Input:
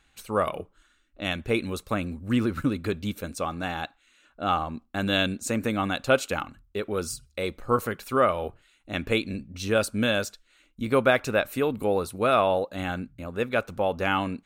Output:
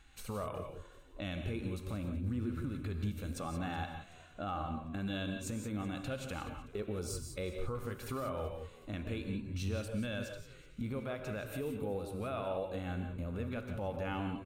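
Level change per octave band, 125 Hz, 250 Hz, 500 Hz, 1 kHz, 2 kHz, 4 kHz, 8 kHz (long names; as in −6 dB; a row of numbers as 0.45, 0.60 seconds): −5.0, −10.0, −14.5, −15.0, −16.5, −15.5, −11.0 decibels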